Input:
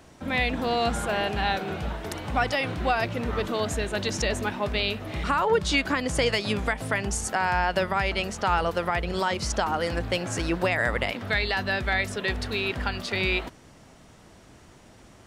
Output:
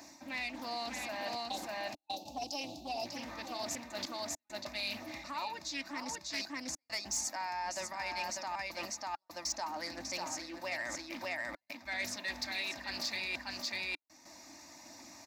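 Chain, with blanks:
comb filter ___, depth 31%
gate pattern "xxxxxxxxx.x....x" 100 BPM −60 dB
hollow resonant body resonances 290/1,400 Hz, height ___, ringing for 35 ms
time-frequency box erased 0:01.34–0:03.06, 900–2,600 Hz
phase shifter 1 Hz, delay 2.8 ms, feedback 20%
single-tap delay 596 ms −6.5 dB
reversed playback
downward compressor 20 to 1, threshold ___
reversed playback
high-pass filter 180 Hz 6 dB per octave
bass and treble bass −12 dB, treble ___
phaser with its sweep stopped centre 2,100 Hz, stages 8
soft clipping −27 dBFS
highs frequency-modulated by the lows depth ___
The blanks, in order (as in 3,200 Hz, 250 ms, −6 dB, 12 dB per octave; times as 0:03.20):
3.3 ms, 12 dB, −29 dBFS, +12 dB, 0.18 ms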